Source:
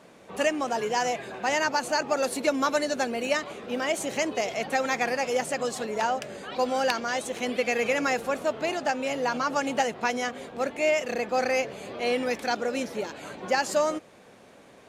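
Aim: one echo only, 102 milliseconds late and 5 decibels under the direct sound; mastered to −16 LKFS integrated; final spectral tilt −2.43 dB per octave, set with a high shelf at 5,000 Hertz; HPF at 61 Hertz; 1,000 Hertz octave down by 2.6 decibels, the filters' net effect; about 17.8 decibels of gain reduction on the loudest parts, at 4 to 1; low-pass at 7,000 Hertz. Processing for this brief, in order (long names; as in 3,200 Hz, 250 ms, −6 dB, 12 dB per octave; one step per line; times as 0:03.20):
high-pass filter 61 Hz
low-pass filter 7,000 Hz
parametric band 1,000 Hz −4 dB
high-shelf EQ 5,000 Hz +9 dB
downward compressor 4 to 1, threshold −43 dBFS
single-tap delay 102 ms −5 dB
level +26 dB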